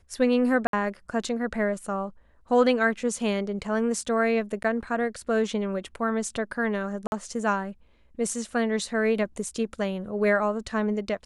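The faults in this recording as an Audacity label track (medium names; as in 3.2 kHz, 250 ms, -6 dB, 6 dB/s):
0.670000	0.730000	dropout 62 ms
4.630000	4.640000	dropout 9.7 ms
7.070000	7.120000	dropout 51 ms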